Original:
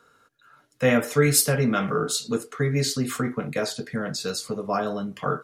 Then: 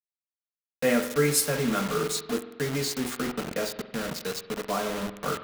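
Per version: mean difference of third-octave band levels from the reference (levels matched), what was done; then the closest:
9.5 dB: elliptic high-pass filter 150 Hz, stop band 40 dB
low-pass that shuts in the quiet parts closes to 1,700 Hz, open at −22 dBFS
bit reduction 5 bits
spring reverb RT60 1.1 s, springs 45 ms, chirp 25 ms, DRR 11 dB
level −3.5 dB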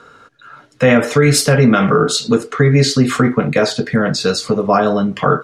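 3.0 dB: high-shelf EQ 7,400 Hz −6 dB
in parallel at −3 dB: downward compressor, threshold −35 dBFS, peak gain reduction 19 dB
on the sum: high-frequency loss of the air 53 metres
boost into a limiter +13 dB
level −1 dB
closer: second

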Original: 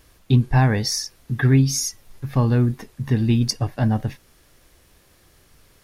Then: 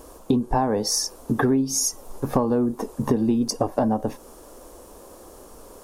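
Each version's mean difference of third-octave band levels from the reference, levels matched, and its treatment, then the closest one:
6.5 dB: octave-band graphic EQ 125/250/500/1,000/2,000/4,000/8,000 Hz −12/+7/+10/+10/−12/−6/+5 dB
downward compressor 10 to 1, threshold −25 dBFS, peak gain reduction 16.5 dB
level +7 dB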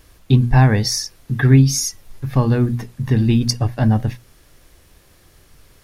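1.0 dB: low-shelf EQ 140 Hz +4.5 dB
mains-hum notches 60/120/180/240 Hz
level +3 dB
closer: second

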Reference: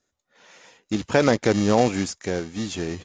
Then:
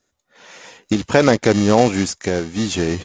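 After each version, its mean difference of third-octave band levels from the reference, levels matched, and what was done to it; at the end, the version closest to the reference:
1.5 dB: camcorder AGC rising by 7.4 dB per second
level +5 dB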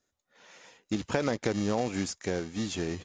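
3.0 dB: downward compressor 6 to 1, threshold −21 dBFS, peak gain reduction 8.5 dB
level −3.5 dB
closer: first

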